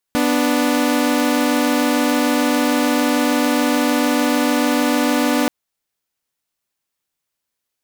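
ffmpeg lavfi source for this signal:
ffmpeg -f lavfi -i "aevalsrc='0.178*((2*mod(246.94*t,1)-1)+(2*mod(293.66*t,1)-1))':duration=5.33:sample_rate=44100" out.wav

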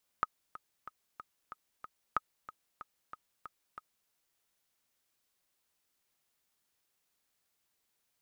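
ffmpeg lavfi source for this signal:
ffmpeg -f lavfi -i "aevalsrc='pow(10,(-15.5-16*gte(mod(t,6*60/186),60/186))/20)*sin(2*PI*1260*mod(t,60/186))*exp(-6.91*mod(t,60/186)/0.03)':duration=3.87:sample_rate=44100" out.wav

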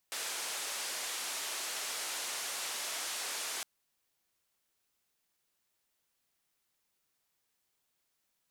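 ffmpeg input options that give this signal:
ffmpeg -f lavfi -i "anoisesrc=color=white:duration=3.51:sample_rate=44100:seed=1,highpass=frequency=470,lowpass=frequency=9400,volume=-29.8dB" out.wav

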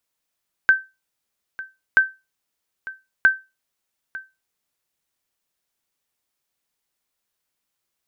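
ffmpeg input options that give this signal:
ffmpeg -f lavfi -i "aevalsrc='0.501*(sin(2*PI*1550*mod(t,1.28))*exp(-6.91*mod(t,1.28)/0.24)+0.119*sin(2*PI*1550*max(mod(t,1.28)-0.9,0))*exp(-6.91*max(mod(t,1.28)-0.9,0)/0.24))':duration=3.84:sample_rate=44100" out.wav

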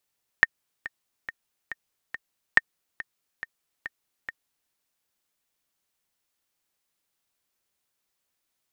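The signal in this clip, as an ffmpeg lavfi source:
ffmpeg -f lavfi -i "aevalsrc='pow(10,(-2-18*gte(mod(t,5*60/140),60/140))/20)*sin(2*PI*1830*mod(t,60/140))*exp(-6.91*mod(t,60/140)/0.03)':duration=4.28:sample_rate=44100" out.wav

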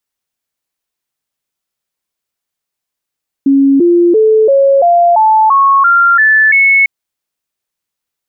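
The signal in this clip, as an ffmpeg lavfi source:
ffmpeg -f lavfi -i "aevalsrc='0.596*clip(min(mod(t,0.34),0.34-mod(t,0.34))/0.005,0,1)*sin(2*PI*275*pow(2,floor(t/0.34)/3)*mod(t,0.34))':duration=3.4:sample_rate=44100" out.wav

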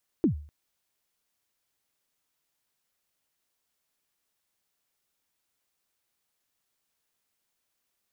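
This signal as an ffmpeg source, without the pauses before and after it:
ffmpeg -f lavfi -i "aevalsrc='0.158*pow(10,-3*t/0.44)*sin(2*PI*(370*0.107/log(74/370)*(exp(log(74/370)*min(t,0.107)/0.107)-1)+74*max(t-0.107,0)))':duration=0.25:sample_rate=44100" out.wav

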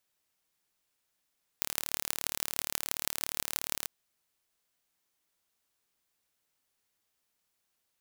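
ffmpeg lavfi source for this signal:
ffmpeg -f lavfi -i "aevalsrc='0.891*eq(mod(n,1189),0)*(0.5+0.5*eq(mod(n,7134),0))':duration=2.26:sample_rate=44100" out.wav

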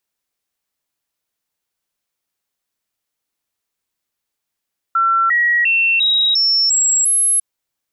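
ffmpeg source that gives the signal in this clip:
ffmpeg -f lavfi -i "aevalsrc='0.266*clip(min(mod(t,0.35),0.35-mod(t,0.35))/0.005,0,1)*sin(2*PI*1350*pow(2,floor(t/0.35)/2)*mod(t,0.35))':duration=2.45:sample_rate=44100" out.wav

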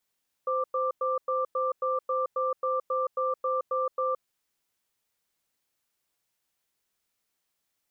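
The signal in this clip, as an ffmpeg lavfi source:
ffmpeg -f lavfi -i "aevalsrc='0.0422*(sin(2*PI*518*t)+sin(2*PI*1180*t))*clip(min(mod(t,0.27),0.17-mod(t,0.27))/0.005,0,1)':duration=3.69:sample_rate=44100" out.wav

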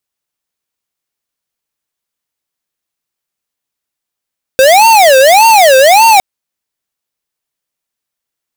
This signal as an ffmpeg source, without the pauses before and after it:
ffmpeg -f lavfi -i "aevalsrc='0.596*(2*lt(mod((717.5*t-195.5/(2*PI*1.7)*sin(2*PI*1.7*t)),1),0.5)-1)':duration=1.61:sample_rate=44100" out.wav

